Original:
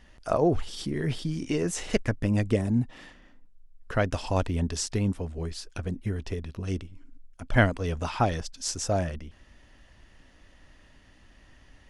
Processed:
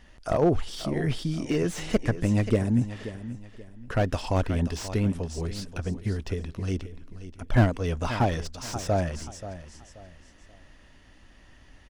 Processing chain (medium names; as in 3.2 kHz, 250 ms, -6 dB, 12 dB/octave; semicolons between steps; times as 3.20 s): on a send: feedback delay 531 ms, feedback 31%, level -13.5 dB; on the sum: slew-rate limiter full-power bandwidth 70 Hz; trim +1.5 dB